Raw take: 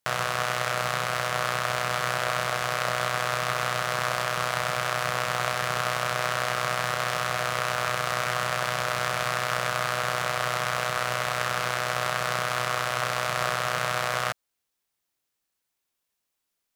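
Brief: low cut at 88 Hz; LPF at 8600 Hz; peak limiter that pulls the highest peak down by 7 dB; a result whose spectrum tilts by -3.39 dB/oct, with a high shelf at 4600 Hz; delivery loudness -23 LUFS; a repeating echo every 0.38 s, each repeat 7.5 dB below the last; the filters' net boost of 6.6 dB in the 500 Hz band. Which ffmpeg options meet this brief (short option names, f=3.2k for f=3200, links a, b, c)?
-af "highpass=88,lowpass=8.6k,equalizer=f=500:t=o:g=8.5,highshelf=f=4.6k:g=-5,alimiter=limit=-15dB:level=0:latency=1,aecho=1:1:380|760|1140|1520|1900:0.422|0.177|0.0744|0.0312|0.0131,volume=5.5dB"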